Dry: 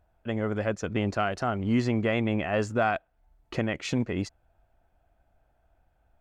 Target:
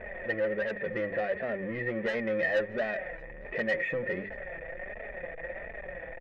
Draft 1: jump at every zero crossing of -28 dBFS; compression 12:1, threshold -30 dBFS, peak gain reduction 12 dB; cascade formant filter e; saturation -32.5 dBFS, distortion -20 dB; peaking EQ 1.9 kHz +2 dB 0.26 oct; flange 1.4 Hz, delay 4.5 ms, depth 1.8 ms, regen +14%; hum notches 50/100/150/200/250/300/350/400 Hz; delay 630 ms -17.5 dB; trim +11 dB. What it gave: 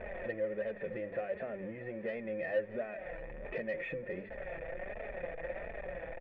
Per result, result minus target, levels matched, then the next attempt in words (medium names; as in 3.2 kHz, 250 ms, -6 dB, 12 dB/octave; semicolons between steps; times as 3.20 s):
compression: peak gain reduction +12 dB; echo-to-direct +10.5 dB; 2 kHz band -4.0 dB
jump at every zero crossing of -28 dBFS; cascade formant filter e; saturation -32.5 dBFS, distortion -9 dB; peaking EQ 1.9 kHz +2 dB 0.26 oct; flange 1.4 Hz, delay 4.5 ms, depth 1.8 ms, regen +14%; hum notches 50/100/150/200/250/300/350/400 Hz; delay 630 ms -17.5 dB; trim +11 dB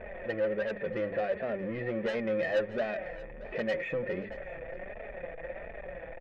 echo-to-direct +10.5 dB; 2 kHz band -4.5 dB
jump at every zero crossing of -28 dBFS; cascade formant filter e; saturation -32.5 dBFS, distortion -9 dB; peaking EQ 1.9 kHz +2 dB 0.26 oct; flange 1.4 Hz, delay 4.5 ms, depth 1.8 ms, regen +14%; hum notches 50/100/150/200/250/300/350/400 Hz; delay 630 ms -28 dB; trim +11 dB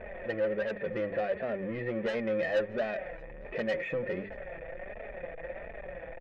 2 kHz band -4.5 dB
jump at every zero crossing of -28 dBFS; cascade formant filter e; saturation -32.5 dBFS, distortion -9 dB; peaking EQ 1.9 kHz +10.5 dB 0.26 oct; flange 1.4 Hz, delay 4.5 ms, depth 1.8 ms, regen +14%; hum notches 50/100/150/200/250/300/350/400 Hz; delay 630 ms -28 dB; trim +11 dB